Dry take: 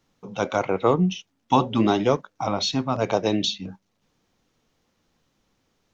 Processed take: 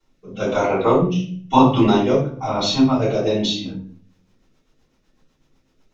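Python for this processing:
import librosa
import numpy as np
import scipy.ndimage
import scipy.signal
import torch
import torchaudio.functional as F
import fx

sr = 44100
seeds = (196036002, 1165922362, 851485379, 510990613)

y = fx.room_shoebox(x, sr, seeds[0], volume_m3=61.0, walls='mixed', distance_m=3.3)
y = fx.rotary_switch(y, sr, hz=1.0, then_hz=8.0, switch_at_s=3.48)
y = y * librosa.db_to_amplitude(-8.5)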